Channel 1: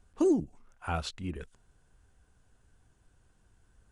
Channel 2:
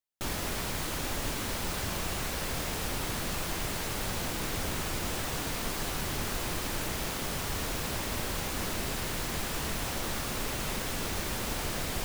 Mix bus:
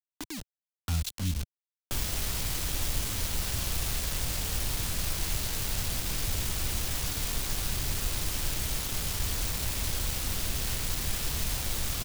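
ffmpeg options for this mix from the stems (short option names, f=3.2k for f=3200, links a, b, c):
-filter_complex "[0:a]lowshelf=f=320:t=q:w=3:g=7,alimiter=limit=-16dB:level=0:latency=1:release=248,volume=-6dB[a];[1:a]acrossover=split=2700[b][c];[c]acompressor=threshold=-44dB:ratio=4:attack=1:release=60[d];[b][d]amix=inputs=2:normalize=0,adelay=1700,volume=-5.5dB[e];[a][e]amix=inputs=2:normalize=0,dynaudnorm=f=110:g=17:m=11.5dB,acrusher=bits=4:mix=0:aa=0.000001,acrossover=split=120|3000[f][g][h];[g]acompressor=threshold=-42dB:ratio=6[i];[f][i][h]amix=inputs=3:normalize=0"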